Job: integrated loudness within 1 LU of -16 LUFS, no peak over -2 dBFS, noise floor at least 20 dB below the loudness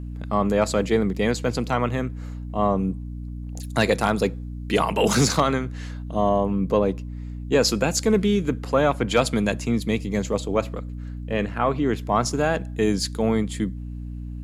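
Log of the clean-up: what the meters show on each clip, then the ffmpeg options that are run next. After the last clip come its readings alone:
hum 60 Hz; harmonics up to 300 Hz; hum level -30 dBFS; loudness -23.0 LUFS; peak -6.0 dBFS; loudness target -16.0 LUFS
-> -af "bandreject=f=60:t=h:w=4,bandreject=f=120:t=h:w=4,bandreject=f=180:t=h:w=4,bandreject=f=240:t=h:w=4,bandreject=f=300:t=h:w=4"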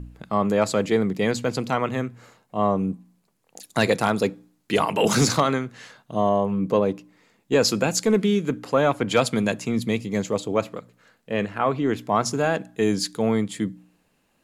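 hum none; loudness -23.5 LUFS; peak -5.5 dBFS; loudness target -16.0 LUFS
-> -af "volume=7.5dB,alimiter=limit=-2dB:level=0:latency=1"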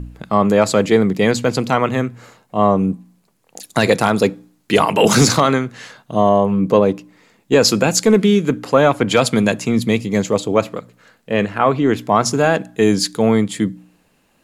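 loudness -16.0 LUFS; peak -2.0 dBFS; noise floor -60 dBFS

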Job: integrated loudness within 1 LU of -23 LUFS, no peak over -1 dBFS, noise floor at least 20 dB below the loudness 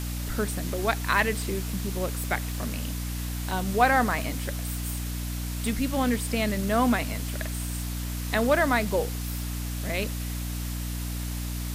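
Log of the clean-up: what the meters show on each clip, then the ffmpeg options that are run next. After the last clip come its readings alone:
hum 60 Hz; harmonics up to 300 Hz; hum level -29 dBFS; noise floor -32 dBFS; noise floor target -48 dBFS; loudness -28.0 LUFS; peak -8.5 dBFS; loudness target -23.0 LUFS
-> -af "bandreject=f=60:t=h:w=6,bandreject=f=120:t=h:w=6,bandreject=f=180:t=h:w=6,bandreject=f=240:t=h:w=6,bandreject=f=300:t=h:w=6"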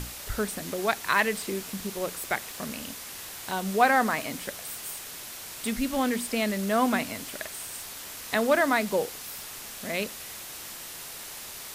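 hum none; noise floor -41 dBFS; noise floor target -49 dBFS
-> -af "afftdn=nr=8:nf=-41"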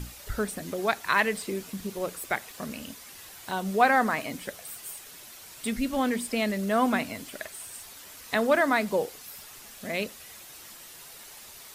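noise floor -47 dBFS; noise floor target -49 dBFS
-> -af "afftdn=nr=6:nf=-47"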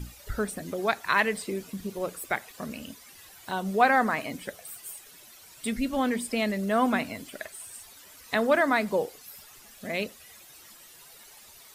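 noise floor -51 dBFS; loudness -28.5 LUFS; peak -9.0 dBFS; loudness target -23.0 LUFS
-> -af "volume=5.5dB"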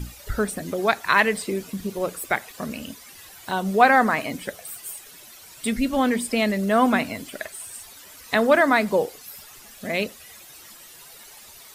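loudness -23.0 LUFS; peak -3.5 dBFS; noise floor -46 dBFS

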